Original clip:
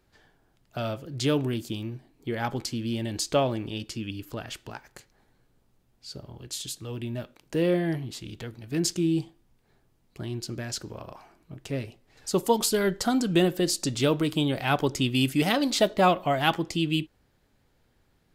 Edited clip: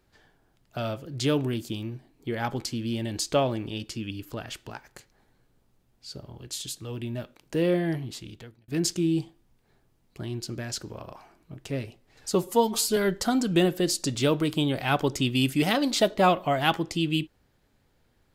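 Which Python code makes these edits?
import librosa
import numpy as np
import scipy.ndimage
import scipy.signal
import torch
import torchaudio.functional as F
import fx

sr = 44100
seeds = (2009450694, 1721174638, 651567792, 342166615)

y = fx.edit(x, sr, fx.fade_out_span(start_s=8.14, length_s=0.54),
    fx.stretch_span(start_s=12.35, length_s=0.41, factor=1.5), tone=tone)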